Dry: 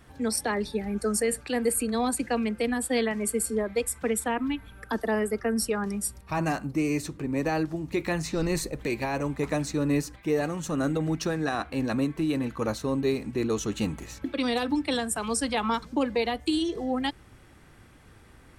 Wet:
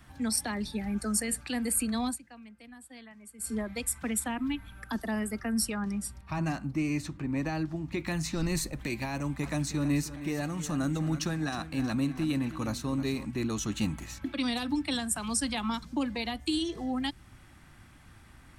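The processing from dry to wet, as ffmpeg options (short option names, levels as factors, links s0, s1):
-filter_complex "[0:a]asettb=1/sr,asplit=3[s0][s1][s2];[s0]atrim=end=5.744[s3];[s1]atrim=start=5.74:end=8.07,asetpts=PTS-STARTPTS,afade=t=in:d=0.004:c=qsin,afade=t=out:st=2.326:d=0.004:c=qsin,highshelf=f=6900:g=-12[s4];[s2]atrim=start=8.066[s5];[s3][s4]acrossfade=d=0.004:c1=hsin:c2=qsin[s6];[s6][s5]acrossfade=d=0.004:c1=qsin:c2=hsin,asettb=1/sr,asplit=3[s7][s8][s9];[s7]atrim=end=9.144[s10];[s8]atrim=start=9.14:end=13.25,asetpts=PTS-STARTPTS,afade=t=in:d=0.004:c=qsin,afade=t=out:st=4.106:d=0.004:c=qsin,aecho=1:1:315|630|945:0.211|0.0697|0.023,atrim=end_sample=181251[s11];[s9]atrim=start=13.246[s12];[s10][s11]acrossfade=d=0.004:c1=hsin:c2=qsin[s13];[s13][s12]acrossfade=d=0.004:c1=qsin:c2=hsin,asplit=3[s14][s15][s16];[s14]atrim=end=2.2,asetpts=PTS-STARTPTS,afade=t=out:st=2.06:d=0.14:silence=0.1[s17];[s15]atrim=start=2.2:end=3.38,asetpts=PTS-STARTPTS,volume=0.1[s18];[s16]atrim=start=3.38,asetpts=PTS-STARTPTS,afade=t=in:d=0.14:silence=0.1[s19];[s17][s18][s19]concat=n=3:v=0:a=1,equalizer=f=450:t=o:w=0.6:g=-13,acrossover=split=450|3000[s20][s21][s22];[s21]acompressor=threshold=0.00891:ratio=2[s23];[s20][s23][s22]amix=inputs=3:normalize=0"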